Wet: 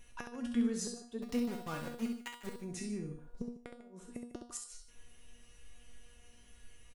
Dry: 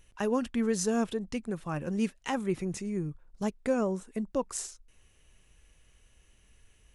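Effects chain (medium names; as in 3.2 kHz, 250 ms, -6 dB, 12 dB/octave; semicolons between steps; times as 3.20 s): 3.10–4.37 s: peaking EQ 410 Hz +12.5 dB -> +6 dB 2.4 oct; compression 2.5:1, threshold -41 dBFS, peak gain reduction 17 dB; inverted gate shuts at -29 dBFS, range -29 dB; 1.22–2.51 s: small samples zeroed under -43.5 dBFS; feedback comb 240 Hz, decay 0.41 s, harmonics all, mix 90%; multi-tap echo 67/149 ms -6.5/-14 dB; trim +15.5 dB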